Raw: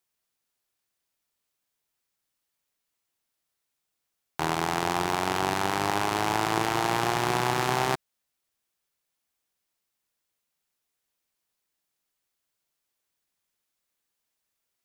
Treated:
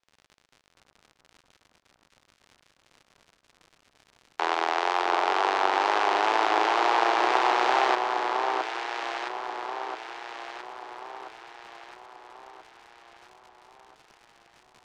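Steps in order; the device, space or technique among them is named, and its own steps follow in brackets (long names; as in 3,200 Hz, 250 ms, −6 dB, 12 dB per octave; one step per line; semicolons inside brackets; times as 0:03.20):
0:04.73–0:05.46: high-pass filter 290 Hz 24 dB per octave
high-pass filter 410 Hz 24 dB per octave
lo-fi chain (low-pass filter 5,300 Hz 12 dB per octave; tape wow and flutter; surface crackle 85 per second −40 dBFS)
high-frequency loss of the air 70 metres
delay that swaps between a low-pass and a high-pass 666 ms, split 1,400 Hz, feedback 67%, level −2.5 dB
level +3 dB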